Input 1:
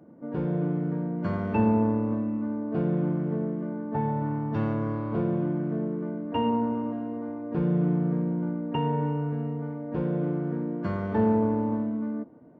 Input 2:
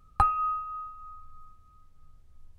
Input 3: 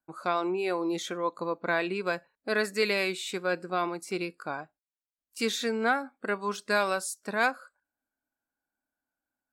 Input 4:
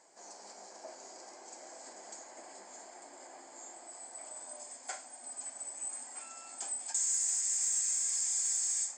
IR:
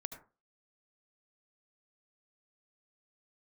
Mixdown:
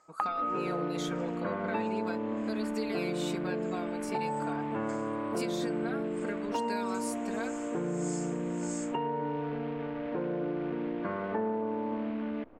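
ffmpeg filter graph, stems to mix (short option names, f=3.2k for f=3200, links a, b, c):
-filter_complex "[0:a]highpass=310,acompressor=mode=upward:threshold=-35dB:ratio=2.5,acrusher=bits=8:dc=4:mix=0:aa=0.000001,adelay=200,volume=2dB[a];[1:a]highpass=520,volume=0dB[b];[2:a]highshelf=f=4.6k:g=8,aecho=1:1:4.4:1,volume=-6.5dB[c];[3:a]aeval=exprs='val(0)*pow(10,-21*(0.5-0.5*cos(2*PI*1.6*n/s))/20)':c=same,volume=-4.5dB[d];[c][d]amix=inputs=2:normalize=0,highshelf=f=6.1k:g=-8,acompressor=threshold=-37dB:ratio=6,volume=0dB[e];[a][b]amix=inputs=2:normalize=0,lowpass=f=2.6k:w=0.5412,lowpass=f=2.6k:w=1.3066,acompressor=threshold=-29dB:ratio=6,volume=0dB[f];[e][f]amix=inputs=2:normalize=0"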